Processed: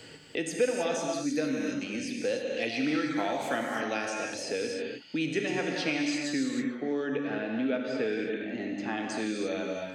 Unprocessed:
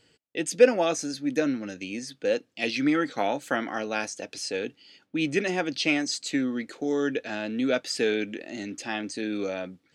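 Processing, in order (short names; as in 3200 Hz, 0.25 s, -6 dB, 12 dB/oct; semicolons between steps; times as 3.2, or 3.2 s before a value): 6.53–8.98 LPF 1800 Hz 12 dB/oct; non-linear reverb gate 0.34 s flat, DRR 0.5 dB; three-band squash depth 70%; gain -6 dB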